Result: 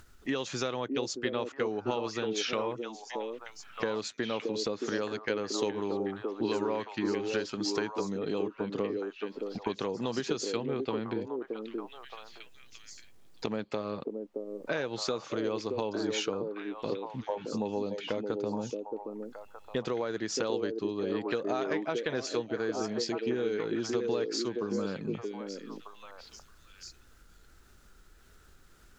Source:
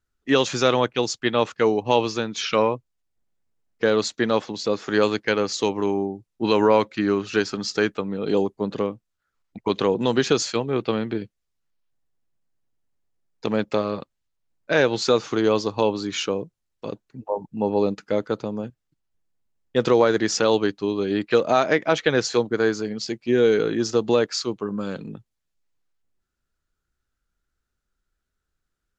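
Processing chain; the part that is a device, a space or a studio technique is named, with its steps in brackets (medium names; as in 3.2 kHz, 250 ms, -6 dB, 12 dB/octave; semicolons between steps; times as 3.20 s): upward and downward compression (upward compressor, threshold -39 dBFS; compression 5:1, threshold -31 dBFS, peak gain reduction 16.5 dB); repeats whose band climbs or falls 622 ms, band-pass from 360 Hz, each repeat 1.4 oct, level -0.5 dB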